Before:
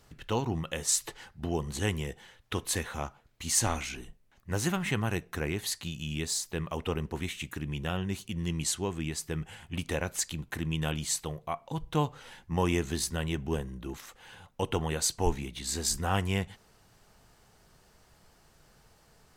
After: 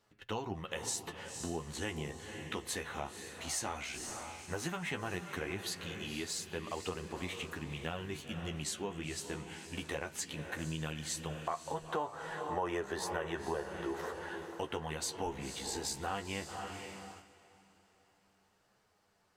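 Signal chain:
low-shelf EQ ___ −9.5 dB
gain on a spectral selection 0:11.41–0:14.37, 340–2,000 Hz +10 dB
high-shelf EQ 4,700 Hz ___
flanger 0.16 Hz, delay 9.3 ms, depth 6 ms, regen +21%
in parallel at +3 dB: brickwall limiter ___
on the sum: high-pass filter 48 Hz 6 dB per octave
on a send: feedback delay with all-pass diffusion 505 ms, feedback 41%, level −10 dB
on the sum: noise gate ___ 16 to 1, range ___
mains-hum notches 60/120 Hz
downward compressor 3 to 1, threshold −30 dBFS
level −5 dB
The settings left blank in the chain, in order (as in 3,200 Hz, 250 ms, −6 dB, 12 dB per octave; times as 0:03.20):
210 Hz, −7.5 dB, −20.5 dBFS, −45 dBFS, −8 dB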